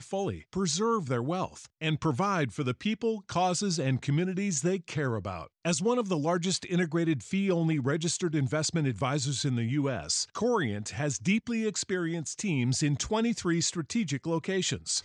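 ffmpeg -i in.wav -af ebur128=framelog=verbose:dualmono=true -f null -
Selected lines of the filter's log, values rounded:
Integrated loudness:
  I:         -26.5 LUFS
  Threshold: -36.5 LUFS
Loudness range:
  LRA:         1.2 LU
  Threshold: -46.4 LUFS
  LRA low:   -26.9 LUFS
  LRA high:  -25.7 LUFS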